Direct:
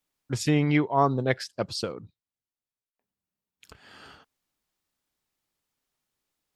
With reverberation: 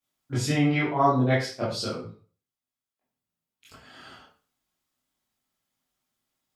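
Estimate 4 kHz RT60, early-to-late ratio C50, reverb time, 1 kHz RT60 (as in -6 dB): 0.35 s, 4.0 dB, 0.40 s, 0.40 s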